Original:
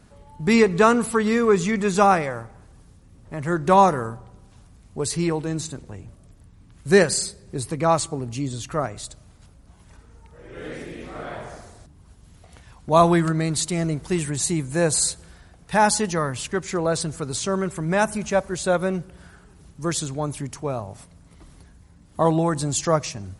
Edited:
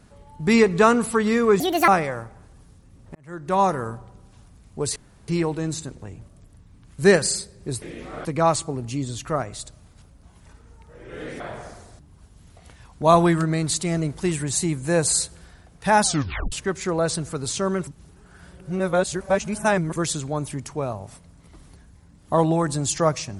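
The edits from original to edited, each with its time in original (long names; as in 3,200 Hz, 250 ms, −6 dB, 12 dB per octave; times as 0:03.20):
0:01.60–0:02.07: play speed 168%
0:03.34–0:04.13: fade in
0:05.15: splice in room tone 0.32 s
0:10.84–0:11.27: move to 0:07.69
0:15.90: tape stop 0.49 s
0:17.74–0:19.83: reverse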